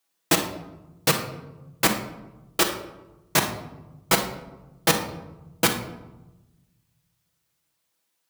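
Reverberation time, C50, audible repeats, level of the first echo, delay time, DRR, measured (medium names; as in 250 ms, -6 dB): 1.0 s, 7.5 dB, no echo, no echo, no echo, 1.0 dB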